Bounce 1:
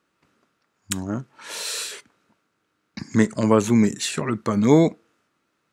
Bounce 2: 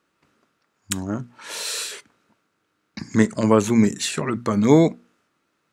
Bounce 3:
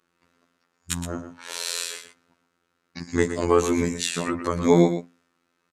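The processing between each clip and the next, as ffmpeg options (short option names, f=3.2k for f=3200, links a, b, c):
-af "bandreject=f=60:t=h:w=6,bandreject=f=120:t=h:w=6,bandreject=f=180:t=h:w=6,bandreject=f=240:t=h:w=6,volume=1dB"
-af "afftfilt=real='hypot(re,im)*cos(PI*b)':imag='0':win_size=2048:overlap=0.75,aecho=1:1:120:0.316,aresample=32000,aresample=44100,volume=1.5dB"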